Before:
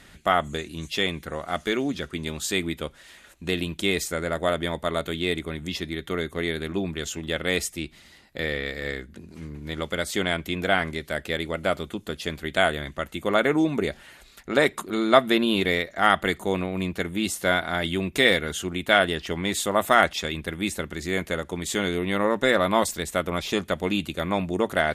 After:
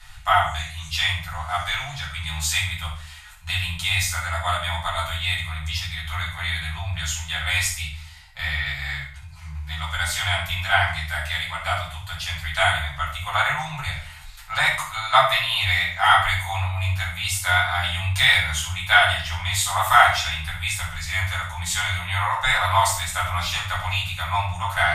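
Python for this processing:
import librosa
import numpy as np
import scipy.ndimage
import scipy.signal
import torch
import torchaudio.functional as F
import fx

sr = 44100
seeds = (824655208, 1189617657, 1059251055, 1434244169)

p1 = scipy.signal.sosfilt(scipy.signal.ellip(3, 1.0, 40, [120.0, 810.0], 'bandstop', fs=sr, output='sos'), x)
p2 = p1 + fx.echo_feedback(p1, sr, ms=64, feedback_pct=33, wet_db=-10, dry=0)
p3 = fx.room_shoebox(p2, sr, seeds[0], volume_m3=32.0, walls='mixed', distance_m=1.3)
y = F.gain(torch.from_numpy(p3), -1.5).numpy()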